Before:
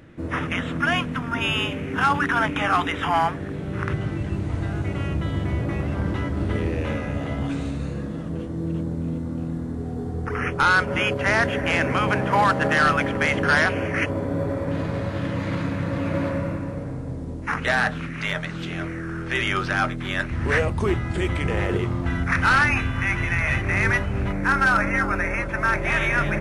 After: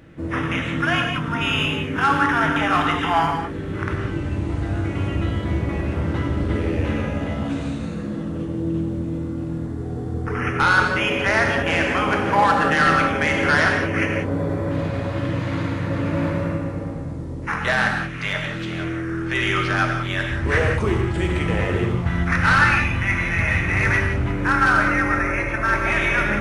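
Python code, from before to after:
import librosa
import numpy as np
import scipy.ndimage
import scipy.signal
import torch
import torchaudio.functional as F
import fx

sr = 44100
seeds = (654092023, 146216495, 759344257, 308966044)

y = fx.rev_gated(x, sr, seeds[0], gate_ms=210, shape='flat', drr_db=1.5)
y = fx.doppler_dist(y, sr, depth_ms=0.11)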